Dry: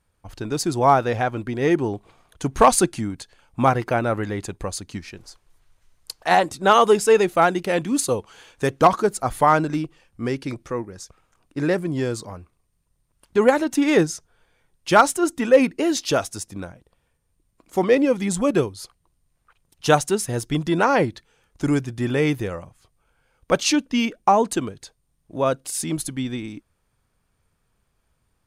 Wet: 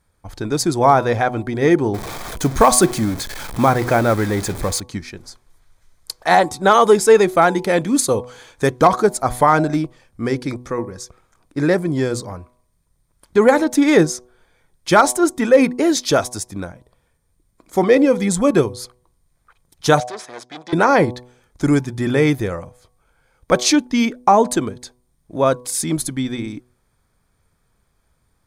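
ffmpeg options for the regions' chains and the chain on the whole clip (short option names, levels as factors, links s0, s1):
-filter_complex "[0:a]asettb=1/sr,asplit=3[s0][s1][s2];[s0]atrim=end=1.944[s3];[s1]atrim=start=1.94:end=4.8,asetpts=PTS-STARTPTS,afade=t=in:d=0.004:c=qsin,afade=t=out:st=2.856:d=0.004:c=qsin,aeval=exprs='val(0)+0.5*0.0355*sgn(val(0))':c=same,acrusher=bits=6:mode=log:mix=0:aa=0.000001[s4];[s2]atrim=start=4.796[s5];[s3][s4]acrossfade=d=0.004:c1=hsin:c2=qsin[s6];[s6][s5]acrossfade=d=0.004:c1=qsin:c2=hsin,asettb=1/sr,asplit=3[s7][s8][s9];[s7]atrim=end=20.004[s10];[s8]atrim=start=20:end=20.73,asetpts=PTS-STARTPTS,afade=t=in:d=0.004:c=qsin,afade=t=out:st=0.726:d=0.004:c=qsin,aeval=exprs='(tanh(22.4*val(0)+0.75)-tanh(0.75))/22.4':c=same,highpass=530,lowpass=4800[s11];[s9]atrim=start=20.726[s12];[s10][s11]acrossfade=d=0.004:c1=hsin:c2=qsin[s13];[s13][s12]acrossfade=d=0.004:c1=qsin:c2=hsin,bandreject=f=2800:w=5.3,bandreject=f=123.6:t=h:w=4,bandreject=f=247.2:t=h:w=4,bandreject=f=370.8:t=h:w=4,bandreject=f=494.4:t=h:w=4,bandreject=f=618:t=h:w=4,bandreject=f=741.6:t=h:w=4,bandreject=f=865.2:t=h:w=4,bandreject=f=988.8:t=h:w=4,bandreject=f=1112.4:t=h:w=4,alimiter=level_in=2:limit=0.891:release=50:level=0:latency=1,volume=0.891"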